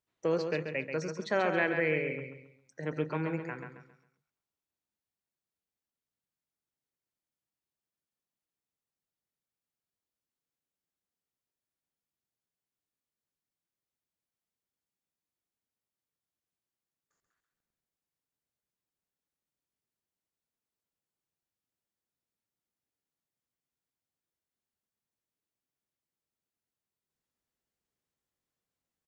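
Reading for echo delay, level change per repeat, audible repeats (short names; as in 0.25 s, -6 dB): 0.135 s, -9.5 dB, 3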